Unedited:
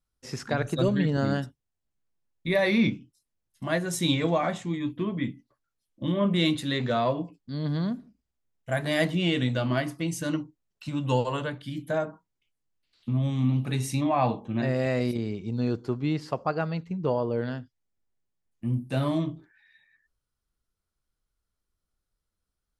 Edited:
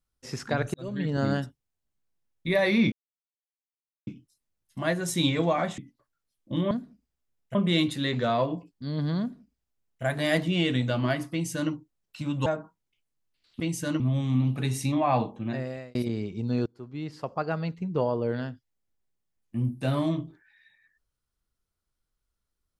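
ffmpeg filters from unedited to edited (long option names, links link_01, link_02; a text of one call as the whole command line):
ffmpeg -i in.wav -filter_complex "[0:a]asplit=11[link_01][link_02][link_03][link_04][link_05][link_06][link_07][link_08][link_09][link_10][link_11];[link_01]atrim=end=0.74,asetpts=PTS-STARTPTS,afade=type=out:start_time=0.736:duration=0.004:curve=hsin[link_12];[link_02]atrim=start=0.74:end=2.92,asetpts=PTS-STARTPTS,afade=type=in:duration=0.5,afade=type=out:start_time=2.176:duration=0.004:curve=hsin,apad=pad_dur=1.15[link_13];[link_03]atrim=start=2.92:end=4.632,asetpts=PTS-STARTPTS,afade=type=in:duration=0.004:curve=hsin[link_14];[link_04]atrim=start=5.288:end=6.222[link_15];[link_05]atrim=start=7.868:end=8.712[link_16];[link_06]atrim=start=6.218:end=11.132[link_17];[link_07]atrim=start=11.948:end=13.092[link_18];[link_08]atrim=start=9.988:end=10.392[link_19];[link_09]atrim=start=13.088:end=15.04,asetpts=PTS-STARTPTS,afade=type=out:start_time=1.272:duration=0.68[link_20];[link_10]atrim=start=15.04:end=15.75,asetpts=PTS-STARTPTS,afade=type=in:duration=0.004:curve=hsin,afade=type=out:start_time=0.706:duration=0.004:curve=hsin:silence=0.0707946[link_21];[link_11]atrim=start=15.75,asetpts=PTS-STARTPTS,afade=type=in:duration=0.99:silence=0.0707946[link_22];[link_12][link_13][link_14]concat=n=3:v=0:a=1[link_23];[link_23][link_15]acrossfade=duration=0.004:curve1=hsin:curve2=hsin[link_24];[link_24][link_16]acrossfade=duration=0.004:curve1=hsin:curve2=hsin[link_25];[link_25][link_17]acrossfade=duration=0.004:curve1=hsin:curve2=hsin[link_26];[link_26][link_18]acrossfade=duration=0.004:curve1=hsin:curve2=hsin[link_27];[link_27][link_19]acrossfade=duration=0.004:curve1=hsin:curve2=hsin[link_28];[link_20][link_21][link_22]concat=n=3:v=0:a=1[link_29];[link_28][link_29]acrossfade=duration=0.004:curve1=hsin:curve2=hsin" out.wav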